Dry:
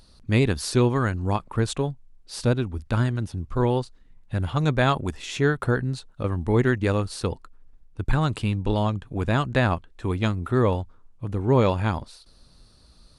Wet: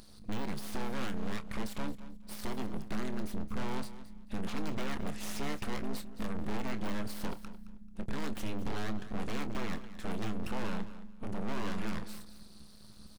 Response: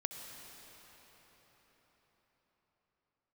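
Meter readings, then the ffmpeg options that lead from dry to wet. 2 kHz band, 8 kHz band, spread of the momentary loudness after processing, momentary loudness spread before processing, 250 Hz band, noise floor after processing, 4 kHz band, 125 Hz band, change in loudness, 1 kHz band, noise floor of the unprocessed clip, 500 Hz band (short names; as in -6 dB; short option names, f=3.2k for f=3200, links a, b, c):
-13.0 dB, -9.5 dB, 10 LU, 10 LU, -11.0 dB, -51 dBFS, -10.5 dB, -20.0 dB, -15.0 dB, -13.5 dB, -55 dBFS, -17.5 dB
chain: -filter_complex "[0:a]deesser=0.9,highshelf=f=7.8k:g=5.5,acompressor=threshold=-22dB:ratio=6,aeval=exprs='abs(val(0))':c=same,tremolo=f=210:d=0.824,asoftclip=type=tanh:threshold=-30dB,asplit=2[a][b];[b]adelay=27,volume=-12.5dB[c];[a][c]amix=inputs=2:normalize=0,asplit=2[d][e];[e]aecho=0:1:219|438:0.178|0.0409[f];[d][f]amix=inputs=2:normalize=0,volume=3dB"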